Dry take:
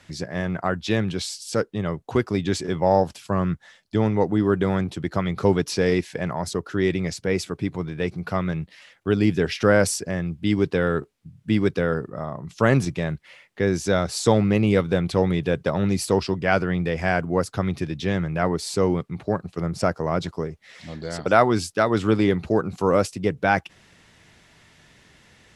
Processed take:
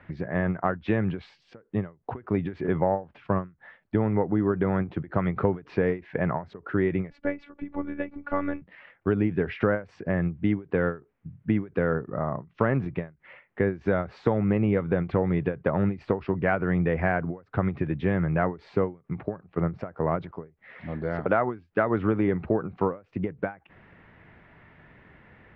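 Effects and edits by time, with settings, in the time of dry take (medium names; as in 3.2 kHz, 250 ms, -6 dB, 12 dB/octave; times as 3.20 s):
7.10–8.62 s: robot voice 286 Hz
whole clip: low-pass 2.1 kHz 24 dB/octave; compression 6:1, threshold -22 dBFS; endings held to a fixed fall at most 220 dB/s; trim +2.5 dB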